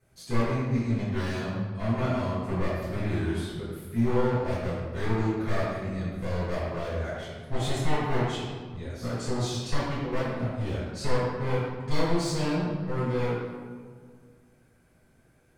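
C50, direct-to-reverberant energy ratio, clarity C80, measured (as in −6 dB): −1.5 dB, −11.5 dB, 0.5 dB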